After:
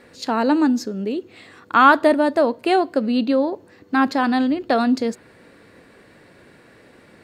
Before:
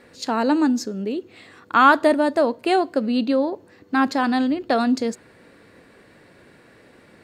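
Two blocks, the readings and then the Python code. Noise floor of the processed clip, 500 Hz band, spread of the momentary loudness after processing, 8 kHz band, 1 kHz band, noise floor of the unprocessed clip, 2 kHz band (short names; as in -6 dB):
-51 dBFS, +1.5 dB, 13 LU, n/a, +1.5 dB, -52 dBFS, +1.5 dB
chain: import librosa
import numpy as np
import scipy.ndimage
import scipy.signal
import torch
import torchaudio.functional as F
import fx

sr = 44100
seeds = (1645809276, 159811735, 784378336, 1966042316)

y = fx.dynamic_eq(x, sr, hz=7300.0, q=1.3, threshold_db=-46.0, ratio=4.0, max_db=-5)
y = F.gain(torch.from_numpy(y), 1.5).numpy()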